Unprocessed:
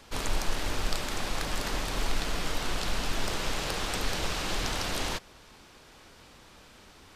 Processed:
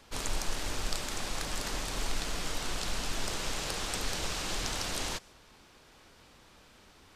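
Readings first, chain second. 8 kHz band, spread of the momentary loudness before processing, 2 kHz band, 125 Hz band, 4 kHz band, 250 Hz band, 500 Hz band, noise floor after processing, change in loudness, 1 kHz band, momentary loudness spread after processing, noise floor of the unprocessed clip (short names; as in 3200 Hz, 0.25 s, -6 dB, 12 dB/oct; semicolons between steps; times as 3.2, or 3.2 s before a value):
+1.0 dB, 2 LU, -4.0 dB, -4.5 dB, -2.0 dB, -4.5 dB, -4.5 dB, -59 dBFS, -2.5 dB, -4.5 dB, 2 LU, -54 dBFS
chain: dynamic EQ 7600 Hz, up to +6 dB, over -52 dBFS, Q 0.79; gain -4.5 dB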